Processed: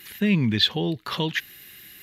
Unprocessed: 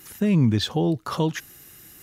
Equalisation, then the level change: band shelf 2700 Hz +14 dB; dynamic EQ 9500 Hz, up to -4 dB, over -45 dBFS, Q 2.1; thirty-one-band EQ 200 Hz +6 dB, 400 Hz +4 dB, 1000 Hz +4 dB, 12500 Hz +9 dB; -5.5 dB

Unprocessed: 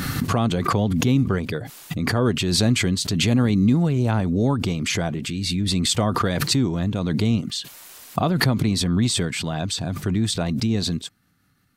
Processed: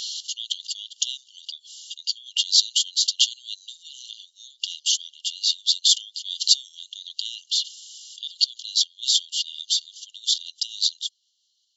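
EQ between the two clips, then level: brick-wall FIR band-pass 2800–7600 Hz; +6.5 dB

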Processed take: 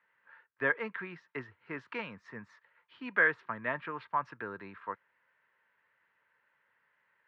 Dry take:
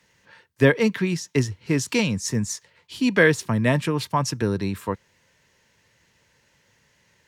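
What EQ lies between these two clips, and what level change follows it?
band-pass 1400 Hz, Q 2.2; air absorption 400 m; 0.0 dB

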